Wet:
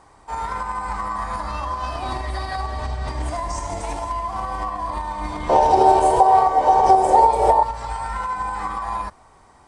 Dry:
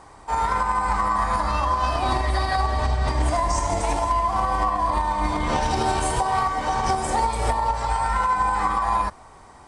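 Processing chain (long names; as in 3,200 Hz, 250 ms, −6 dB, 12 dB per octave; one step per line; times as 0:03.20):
0:05.49–0:07.63: flat-topped bell 570 Hz +15.5 dB
level −4.5 dB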